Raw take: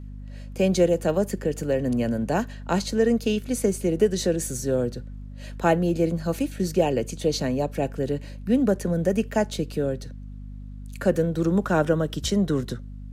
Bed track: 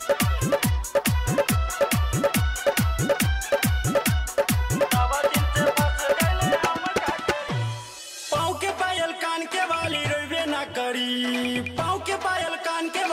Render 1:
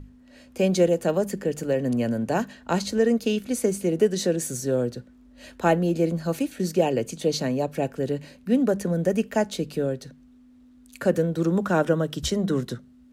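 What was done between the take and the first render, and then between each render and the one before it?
notches 50/100/150/200 Hz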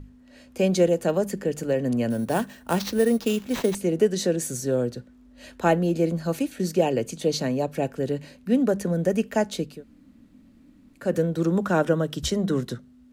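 2.1–3.75 sample-rate reducer 10000 Hz; 9.72–11.05 room tone, crossfade 0.24 s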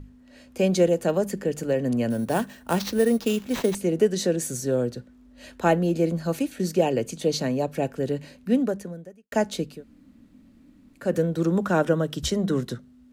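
8.54–9.32 fade out quadratic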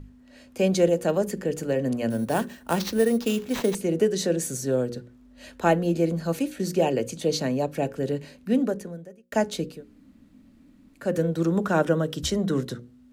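notches 60/120/180/240/300/360/420/480/540 Hz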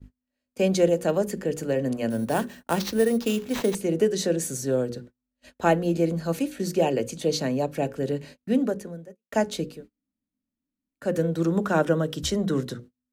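notches 60/120/180/240 Hz; gate -43 dBFS, range -33 dB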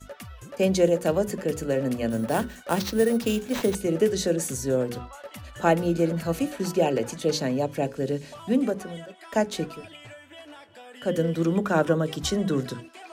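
add bed track -19.5 dB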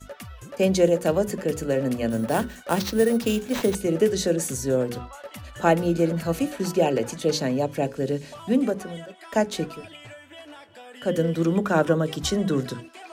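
gain +1.5 dB

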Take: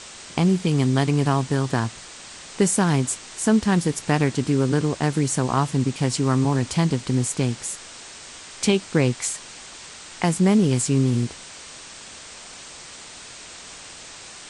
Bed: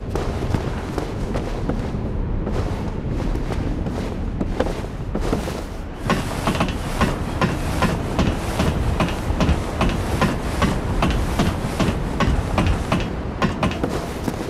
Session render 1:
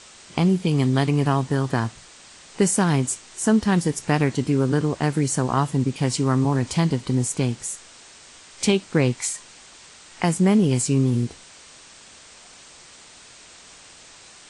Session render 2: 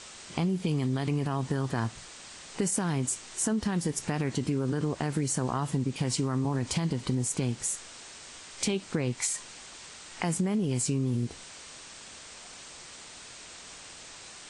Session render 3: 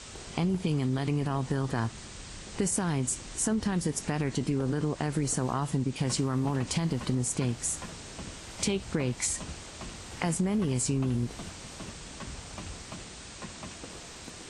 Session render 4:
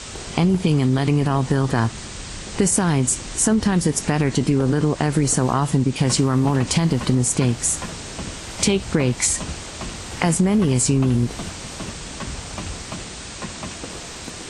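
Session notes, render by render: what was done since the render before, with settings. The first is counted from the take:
noise print and reduce 6 dB
limiter -15 dBFS, peak gain reduction 9.5 dB; compressor, threshold -25 dBFS, peak gain reduction 7 dB
add bed -23.5 dB
gain +10.5 dB

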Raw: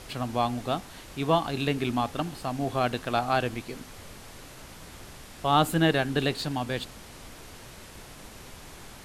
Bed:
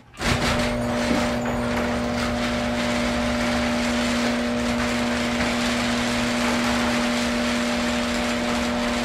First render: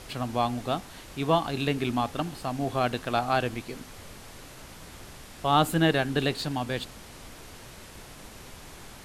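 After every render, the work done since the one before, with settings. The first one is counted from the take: nothing audible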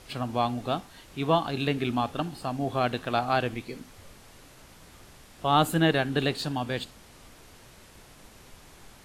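noise print and reduce 6 dB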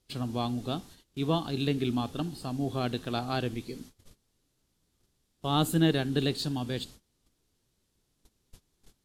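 gate -46 dBFS, range -22 dB; band shelf 1200 Hz -8.5 dB 2.6 oct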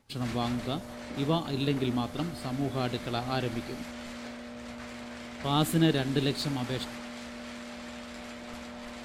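add bed -19 dB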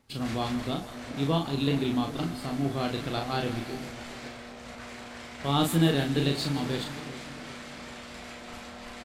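doubler 36 ms -4 dB; split-band echo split 800 Hz, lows 0.401 s, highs 0.162 s, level -14 dB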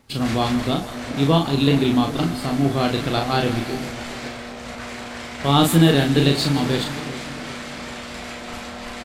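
gain +9.5 dB; limiter -3 dBFS, peak gain reduction 2 dB

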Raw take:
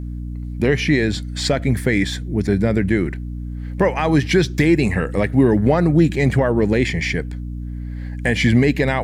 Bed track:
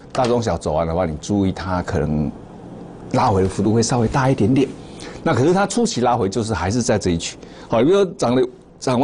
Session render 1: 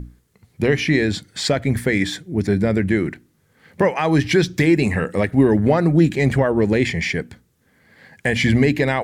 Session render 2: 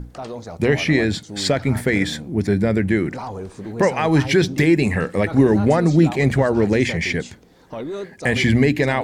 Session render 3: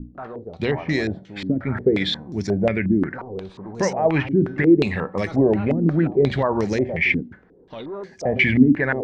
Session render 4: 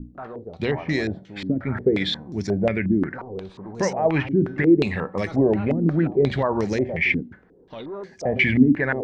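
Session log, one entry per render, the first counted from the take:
notches 60/120/180/240/300 Hz
add bed track -14.5 dB
resonator 190 Hz, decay 0.45 s, harmonics all, mix 50%; stepped low-pass 5.6 Hz 270–5800 Hz
gain -1.5 dB

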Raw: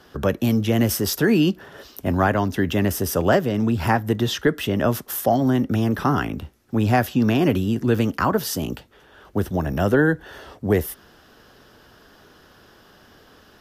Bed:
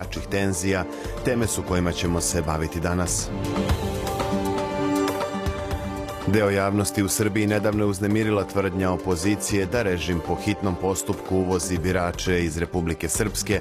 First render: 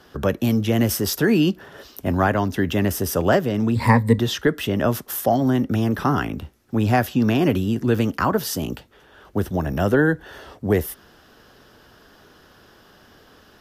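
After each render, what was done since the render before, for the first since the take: 3.75–4.19 ripple EQ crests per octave 0.97, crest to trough 16 dB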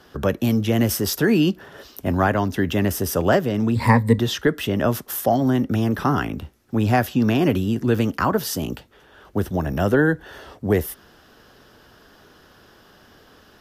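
nothing audible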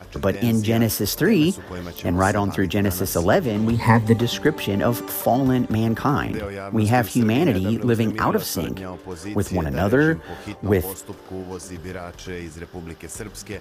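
add bed -10 dB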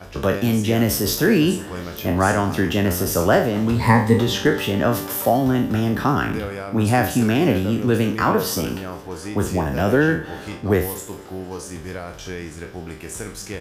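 spectral trails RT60 0.44 s; feedback echo 0.23 s, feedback 51%, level -22.5 dB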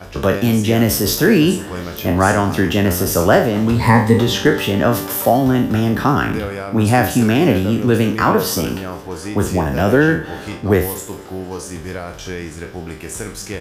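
gain +4 dB; limiter -1 dBFS, peak gain reduction 2 dB

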